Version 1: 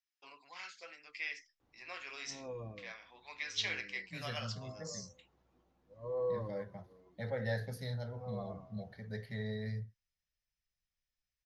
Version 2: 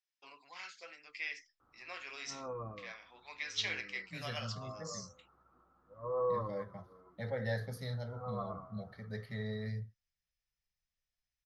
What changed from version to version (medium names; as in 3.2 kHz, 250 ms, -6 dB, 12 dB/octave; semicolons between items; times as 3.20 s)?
background: add resonant low-pass 1.3 kHz, resonance Q 13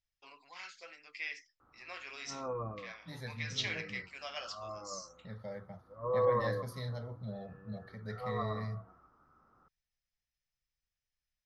second voice: entry -1.05 s; background +4.0 dB